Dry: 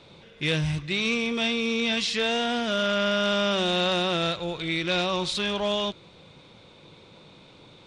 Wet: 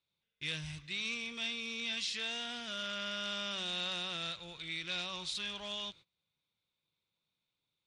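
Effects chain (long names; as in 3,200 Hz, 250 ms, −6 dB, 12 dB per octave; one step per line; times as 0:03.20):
noise gate −41 dBFS, range −23 dB
guitar amp tone stack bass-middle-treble 5-5-5
level −2 dB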